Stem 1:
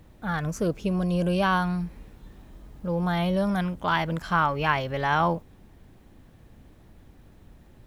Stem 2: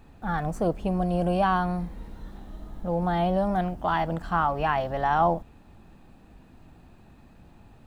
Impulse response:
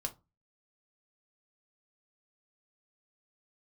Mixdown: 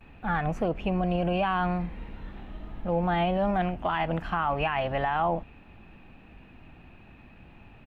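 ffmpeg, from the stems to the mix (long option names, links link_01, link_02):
-filter_complex "[0:a]volume=-16dB[link_01];[1:a]lowpass=frequency=2600:width_type=q:width=3.5,adelay=8,volume=0.5dB,asplit=2[link_02][link_03];[link_03]apad=whole_len=346658[link_04];[link_01][link_04]sidechaincompress=threshold=-27dB:ratio=8:attack=34:release=258[link_05];[link_05][link_02]amix=inputs=2:normalize=0,alimiter=limit=-17.5dB:level=0:latency=1:release=61"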